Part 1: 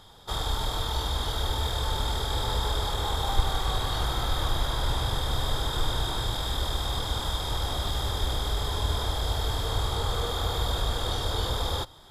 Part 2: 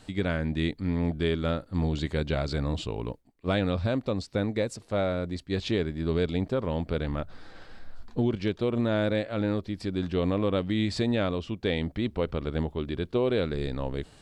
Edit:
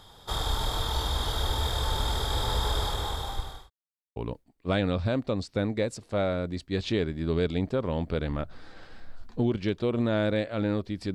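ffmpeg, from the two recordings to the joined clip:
-filter_complex "[0:a]apad=whole_dur=11.14,atrim=end=11.14,asplit=2[s0][s1];[s0]atrim=end=3.7,asetpts=PTS-STARTPTS,afade=t=out:st=2.81:d=0.89[s2];[s1]atrim=start=3.7:end=4.16,asetpts=PTS-STARTPTS,volume=0[s3];[1:a]atrim=start=2.95:end=9.93,asetpts=PTS-STARTPTS,afade=t=in:d=0.004:c=hsin[s4];[s2][s3][s4]concat=n=3:v=0:a=1"

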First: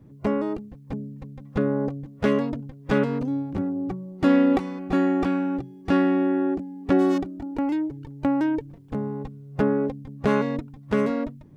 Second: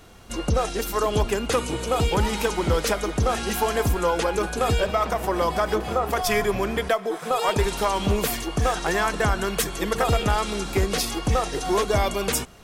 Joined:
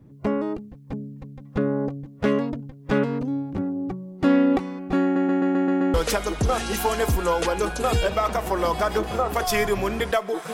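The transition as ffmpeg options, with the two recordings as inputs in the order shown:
-filter_complex "[0:a]apad=whole_dur=10.53,atrim=end=10.53,asplit=7[s0][s1][s2][s3][s4][s5][s6];[s0]atrim=end=5.162[s7];[s1]atrim=start=5.028:end=5.162[s8];[s2]atrim=start=5.028:end=5.162[s9];[s3]atrim=start=5.028:end=5.162[s10];[s4]atrim=start=5.028:end=5.162[s11];[s5]atrim=start=5.028:end=5.162[s12];[s6]atrim=start=5.028:end=5.162[s13];[1:a]atrim=start=2.708:end=7.3[s14];[s7][s8]acrossfade=d=0.004:c1=hsin:c2=hsin[s15];[s15][s9]acrossfade=d=0.004:c1=hsin:c2=hsin[s16];[s16][s10]acrossfade=d=0.004:c1=hsin:c2=hsin[s17];[s17][s11]acrossfade=d=0.004:c1=hsin:c2=hsin[s18];[s18][s12]acrossfade=d=0.004:c1=hsin:c2=hsin[s19];[s19][s13]acrossfade=d=0.004:c1=hsin:c2=hsin[s20];[s20][s14]acrossfade=d=0.004:c1=hsin:c2=hsin"

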